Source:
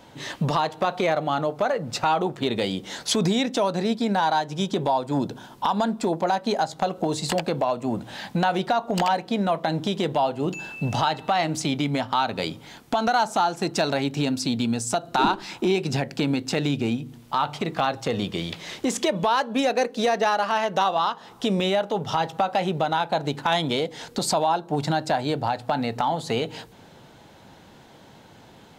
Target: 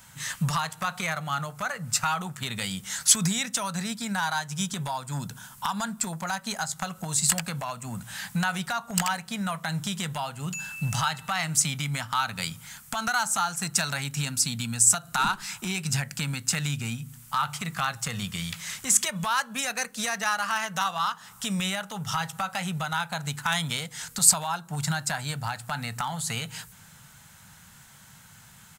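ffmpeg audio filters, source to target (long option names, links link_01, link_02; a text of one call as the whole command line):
ffmpeg -i in.wav -af "firequalizer=gain_entry='entry(170,0);entry(310,-22);entry(1300,3);entry(3700,-2);entry(7900,15)':delay=0.05:min_phase=1,volume=-1dB" out.wav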